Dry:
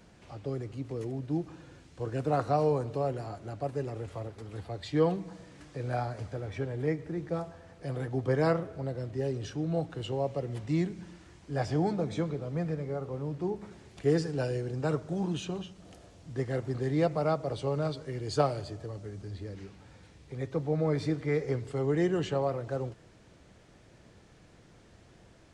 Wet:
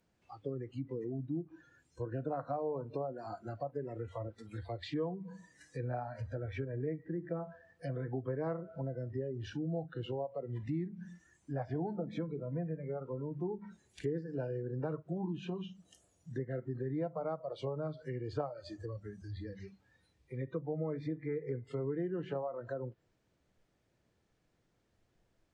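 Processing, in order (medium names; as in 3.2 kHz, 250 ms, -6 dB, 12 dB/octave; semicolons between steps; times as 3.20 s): hum notches 50/100/150/200 Hz; compression 4:1, threshold -35 dBFS, peak gain reduction 13 dB; spectral noise reduction 20 dB; low-pass that closes with the level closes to 1.3 kHz, closed at -35 dBFS; trim +1 dB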